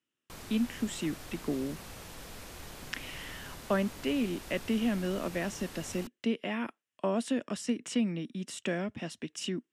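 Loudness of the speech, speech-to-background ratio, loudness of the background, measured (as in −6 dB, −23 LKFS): −34.0 LKFS, 12.0 dB, −46.0 LKFS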